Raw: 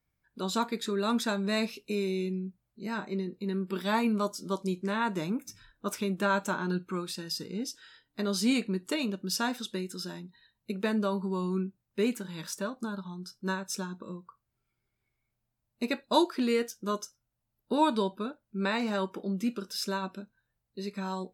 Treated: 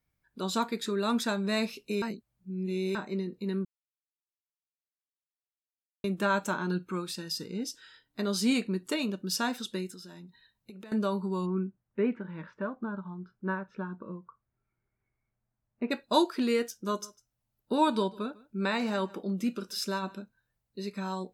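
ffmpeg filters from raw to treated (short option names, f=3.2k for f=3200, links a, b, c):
-filter_complex "[0:a]asettb=1/sr,asplit=3[a][b][c];[a]atrim=end=9.904[d];[b]atrim=start=9.9:end=10.92,asetpts=PTS-STARTPTS,afade=t=in:d=0.004:c=qsin,afade=t=out:st=1.016:d=0.004:c=qsin,acompressor=threshold=-43dB:ratio=12:attack=3.2:release=140:knee=1:detection=peak[e];[c]atrim=start=10.916[f];[d][e]acrossfade=d=0.004:c1=hsin:c2=qsin[g];[g][f]acrossfade=d=0.004:c1=qsin:c2=hsin,asplit=3[h][i][j];[h]afade=t=out:st=11.45:d=0.02[k];[i]lowpass=f=2.1k:w=0.5412,lowpass=f=2.1k:w=1.3066,afade=t=in:st=11.45:d=0.02,afade=t=out:st=15.9:d=0.02[l];[j]afade=t=in:st=15.9:d=0.02[m];[k][l][m]amix=inputs=3:normalize=0,asettb=1/sr,asplit=3[n][o][p];[n]atrim=end=16.704[q];[o]atrim=start=16.7:end=20.19,asetpts=PTS-STARTPTS,afade=t=in:d=0.004:c=qsin,afade=t=out:st=3.486:d=0.004:c=qsin,aecho=1:1:150:0.075,atrim=end_sample=153909[r];[p]atrim=start=20.186[s];[q][r]acrossfade=d=0.004:c1=hsin:c2=qsin[t];[t][s]acrossfade=d=0.004:c1=qsin:c2=hsin,asplit=5[u][v][w][x][y];[u]atrim=end=2.022[z];[v]atrim=start=2.018:end=2.952,asetpts=PTS-STARTPTS,areverse[aa];[w]atrim=start=2.948:end=3.65,asetpts=PTS-STARTPTS,afade=t=out:st=0.698:d=0.004:c=hsin[ab];[x]atrim=start=3.65:end=6.04,asetpts=PTS-STARTPTS,volume=0[ac];[y]atrim=start=6.04,asetpts=PTS-STARTPTS,afade=t=in:d=0.004:c=hsin[ad];[z][aa]acrossfade=d=0.004:c1=hsin:c2=hsin[ae];[ab][ac][ad]concat=n=3:v=0:a=1[af];[ae][af]acrossfade=d=0.004:c1=hsin:c2=hsin"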